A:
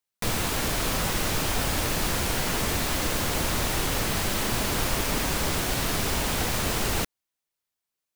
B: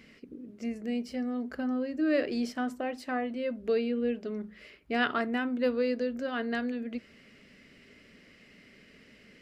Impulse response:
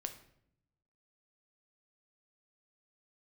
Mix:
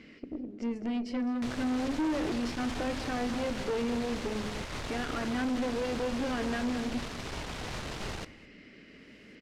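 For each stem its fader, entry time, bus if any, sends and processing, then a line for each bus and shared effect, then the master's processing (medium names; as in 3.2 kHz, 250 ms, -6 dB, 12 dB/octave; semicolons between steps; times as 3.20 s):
-11.5 dB, 1.20 s, send -4 dB, echo send -21 dB, upward compressor, threshold -30 dBFS
+2.5 dB, 0.00 s, send -10.5 dB, echo send -11 dB, peak limiter -26 dBFS, peak gain reduction 11.5 dB; peaking EQ 310 Hz +7.5 dB 0.49 oct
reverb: on, RT60 0.70 s, pre-delay 7 ms
echo: delay 208 ms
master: low-pass 5.4 kHz 12 dB/octave; valve stage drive 27 dB, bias 0.55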